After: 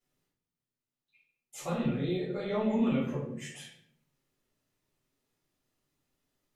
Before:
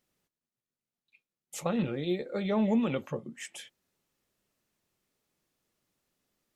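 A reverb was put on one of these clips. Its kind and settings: simulated room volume 120 m³, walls mixed, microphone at 3.1 m; trim -12.5 dB

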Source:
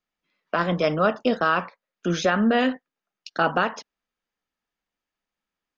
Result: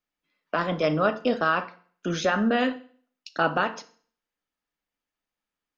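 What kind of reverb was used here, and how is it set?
FDN reverb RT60 0.49 s, low-frequency decay 1.05×, high-frequency decay 0.95×, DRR 10 dB; trim -2.5 dB

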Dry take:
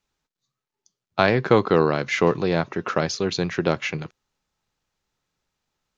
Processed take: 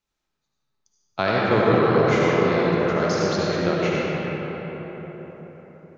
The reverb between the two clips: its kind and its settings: algorithmic reverb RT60 4.9 s, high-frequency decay 0.45×, pre-delay 35 ms, DRR -6 dB; trim -5.5 dB

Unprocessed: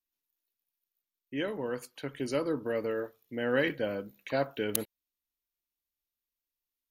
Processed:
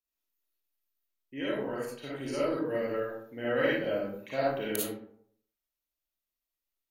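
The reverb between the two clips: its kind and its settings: algorithmic reverb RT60 0.63 s, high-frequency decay 0.5×, pre-delay 15 ms, DRR -7.5 dB; trim -7 dB

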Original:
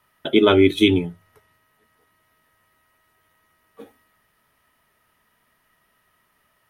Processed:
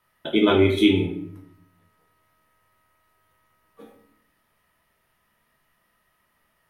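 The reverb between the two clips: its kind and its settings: simulated room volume 120 m³, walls mixed, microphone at 0.77 m; trim -5.5 dB

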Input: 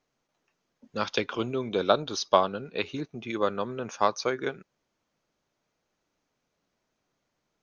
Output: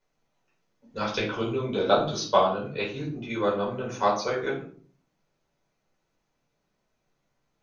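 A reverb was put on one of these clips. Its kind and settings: simulated room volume 390 m³, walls furnished, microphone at 4.8 m; trim -7 dB

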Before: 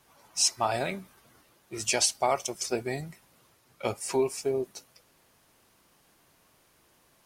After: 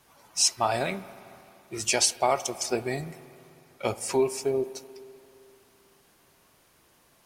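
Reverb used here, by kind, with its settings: spring tank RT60 2.8 s, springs 43/56 ms, chirp 45 ms, DRR 15 dB; trim +2 dB

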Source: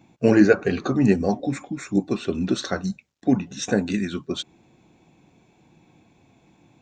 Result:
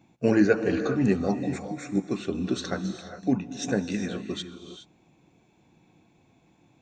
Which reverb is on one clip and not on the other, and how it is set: gated-style reverb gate 440 ms rising, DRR 8.5 dB; trim -5 dB

